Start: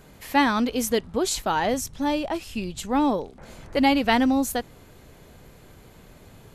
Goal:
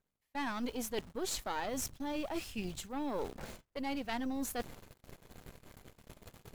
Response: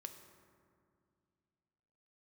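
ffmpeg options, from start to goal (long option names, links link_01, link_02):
-af "acrusher=bits=8:dc=4:mix=0:aa=0.000001,areverse,acompressor=threshold=-36dB:ratio=6,areverse,aeval=exprs='0.0501*(cos(1*acos(clip(val(0)/0.0501,-1,1)))-cos(1*PI/2))+0.0126*(cos(2*acos(clip(val(0)/0.0501,-1,1)))-cos(2*PI/2))+0.000355*(cos(3*acos(clip(val(0)/0.0501,-1,1)))-cos(3*PI/2))+0.00282*(cos(6*acos(clip(val(0)/0.0501,-1,1)))-cos(6*PI/2))':channel_layout=same,agate=range=-30dB:threshold=-47dB:ratio=16:detection=peak"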